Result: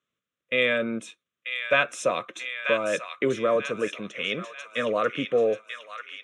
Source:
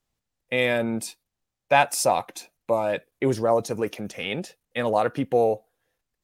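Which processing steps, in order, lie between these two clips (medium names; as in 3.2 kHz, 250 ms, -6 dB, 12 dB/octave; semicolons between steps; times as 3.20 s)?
band-stop 360 Hz, Q 12; wow and flutter 16 cents; cabinet simulation 240–6500 Hz, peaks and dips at 270 Hz -4 dB, 560 Hz +3 dB, 1.2 kHz +8 dB, 1.9 kHz -4 dB, 3.5 kHz +6 dB; static phaser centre 2 kHz, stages 4; on a send: feedback echo behind a high-pass 938 ms, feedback 47%, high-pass 1.5 kHz, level -5.5 dB; 1.73–3.56 s: on the sum: three bands compressed up and down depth 40%; trim +3 dB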